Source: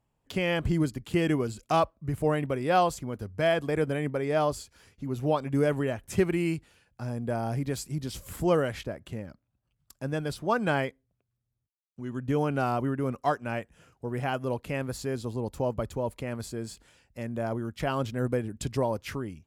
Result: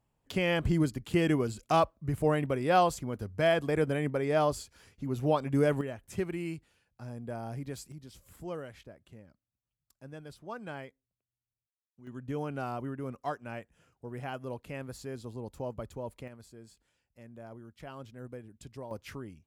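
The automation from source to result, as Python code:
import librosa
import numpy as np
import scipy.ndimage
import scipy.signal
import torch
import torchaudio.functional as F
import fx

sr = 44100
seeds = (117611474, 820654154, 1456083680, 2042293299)

y = fx.gain(x, sr, db=fx.steps((0.0, -1.0), (5.81, -8.5), (7.92, -15.0), (12.07, -8.5), (16.28, -16.0), (18.91, -8.0)))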